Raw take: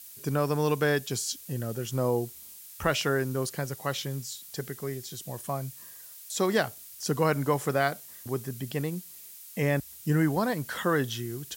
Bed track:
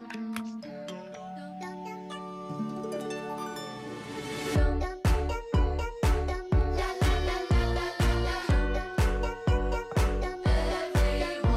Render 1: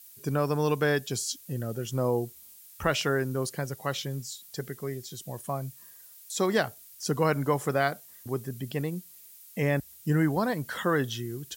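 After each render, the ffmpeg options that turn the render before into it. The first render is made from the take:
-af "afftdn=nr=6:nf=-47"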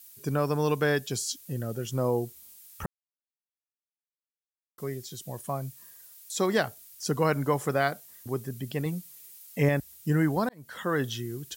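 -filter_complex "[0:a]asettb=1/sr,asplit=3[s0][s1][s2];[s0]atrim=end=8.854[s3];[s1]atrim=start=8.85:end=9.69,asetpts=PTS-STARTPTS,afade=t=in:d=0.004:c=qsin,afade=t=out:st=0.836:d=0.004:c=qsin,aecho=1:1:7.2:0.69,atrim=end_sample=37044[s4];[s2]atrim=start=9.686[s5];[s3][s4]acrossfade=d=0.004:c1=hsin:c2=qsin[s6];[s6][s5]acrossfade=d=0.004:c1=qsin:c2=hsin,asplit=4[s7][s8][s9][s10];[s7]atrim=end=2.86,asetpts=PTS-STARTPTS,afade=t=out:st=2.856:d=0.004:c=hsin[s11];[s8]atrim=start=2.86:end=4.78,asetpts=PTS-STARTPTS,volume=0[s12];[s9]atrim=start=4.78:end=10.49,asetpts=PTS-STARTPTS,afade=t=in:d=0.004:c=hsin,afade=t=out:st=5.706:d=0.004:c=hsin[s13];[s10]atrim=start=10.49,asetpts=PTS-STARTPTS,afade=t=in:d=0.56[s14];[s11][s12][s13][s14]concat=n=4:v=0:a=1"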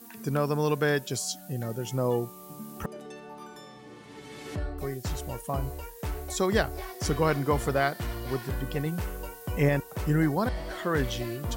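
-filter_complex "[1:a]volume=0.376[s0];[0:a][s0]amix=inputs=2:normalize=0"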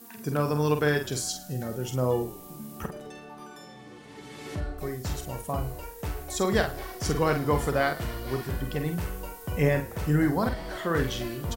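-filter_complex "[0:a]asplit=2[s0][s1];[s1]adelay=47,volume=0.447[s2];[s0][s2]amix=inputs=2:normalize=0,asplit=6[s3][s4][s5][s6][s7][s8];[s4]adelay=108,afreqshift=-39,volume=0.112[s9];[s5]adelay=216,afreqshift=-78,volume=0.0617[s10];[s6]adelay=324,afreqshift=-117,volume=0.0339[s11];[s7]adelay=432,afreqshift=-156,volume=0.0186[s12];[s8]adelay=540,afreqshift=-195,volume=0.0102[s13];[s3][s9][s10][s11][s12][s13]amix=inputs=6:normalize=0"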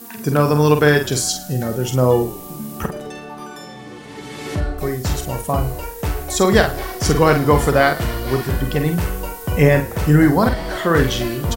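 -af "volume=3.55,alimiter=limit=0.891:level=0:latency=1"

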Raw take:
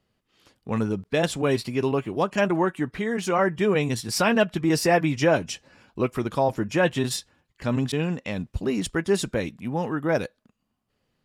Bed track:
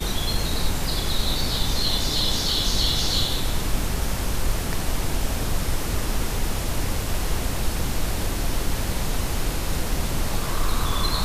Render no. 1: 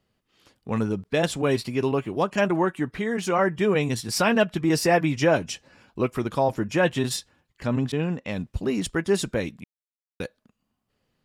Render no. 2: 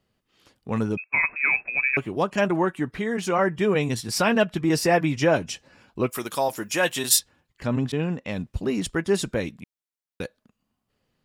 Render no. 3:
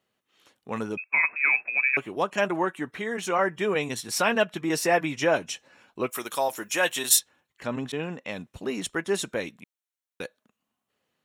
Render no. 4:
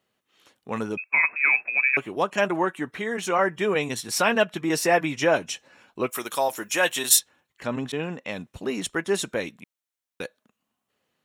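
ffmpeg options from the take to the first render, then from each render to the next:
-filter_complex "[0:a]asettb=1/sr,asplit=3[s0][s1][s2];[s0]atrim=end=7.674[s3];[s1]atrim=start=7.67:end=8.29,asetpts=PTS-STARTPTS,afade=t=in:d=0.004:c=qsin,afade=t=out:st=0.616:d=0.004:c=qsin,highshelf=f=3100:g=-7.5[s4];[s2]atrim=start=8.286[s5];[s3][s4]acrossfade=d=0.004:c1=hsin:c2=qsin[s6];[s6][s5]acrossfade=d=0.004:c1=qsin:c2=hsin,asplit=3[s7][s8][s9];[s7]atrim=end=9.64,asetpts=PTS-STARTPTS,afade=t=out:st=9.636:d=0.004:c=hsin[s10];[s8]atrim=start=9.64:end=10.2,asetpts=PTS-STARTPTS,volume=0[s11];[s9]atrim=start=10.2,asetpts=PTS-STARTPTS,afade=t=in:d=0.004:c=hsin[s12];[s10][s11][s12]concat=n=3:v=0:a=1"
-filter_complex "[0:a]asettb=1/sr,asplit=3[s0][s1][s2];[s0]atrim=end=0.974[s3];[s1]atrim=start=0.97:end=1.97,asetpts=PTS-STARTPTS,afade=t=in:d=0.004:c=qsin,afade=t=out:st=0.996:d=0.004:c=qsin,lowpass=f=2300:t=q:w=0.5098,lowpass=f=2300:t=q:w=0.6013,lowpass=f=2300:t=q:w=0.9,lowpass=f=2300:t=q:w=2.563,afreqshift=-2700[s4];[s2]atrim=start=1.966[s5];[s3][s4]acrossfade=d=0.004:c1=hsin:c2=qsin[s6];[s6][s5]acrossfade=d=0.004:c1=qsin:c2=hsin,asplit=3[s7][s8][s9];[s7]afade=t=out:st=6.1:d=0.02[s10];[s8]aemphasis=mode=production:type=riaa,afade=t=in:st=6.1:d=0.02,afade=t=out:st=7.18:d=0.02[s11];[s9]afade=t=in:st=7.18:d=0.02[s12];[s10][s11][s12]amix=inputs=3:normalize=0"
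-af "highpass=f=490:p=1,bandreject=f=4800:w=6.5"
-af "volume=1.26"

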